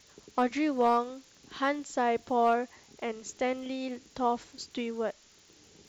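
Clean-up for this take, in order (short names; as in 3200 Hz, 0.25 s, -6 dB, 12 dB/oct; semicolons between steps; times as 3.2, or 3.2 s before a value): clip repair -17 dBFS; de-click; denoiser 15 dB, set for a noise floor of -59 dBFS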